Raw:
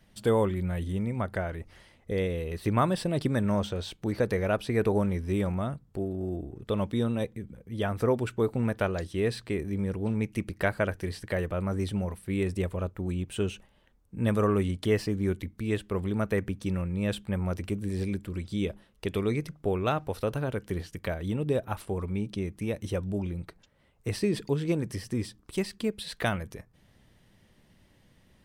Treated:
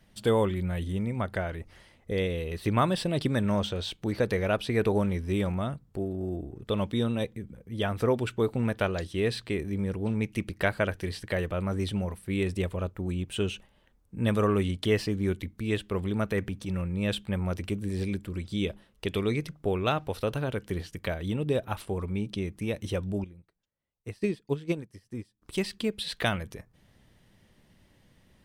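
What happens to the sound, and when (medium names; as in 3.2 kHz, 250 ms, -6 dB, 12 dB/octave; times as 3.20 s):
16.30–16.89 s: transient shaper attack -7 dB, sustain +1 dB
23.24–25.42 s: upward expansion 2.5:1, over -39 dBFS
whole clip: dynamic bell 3.3 kHz, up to +6 dB, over -52 dBFS, Q 1.3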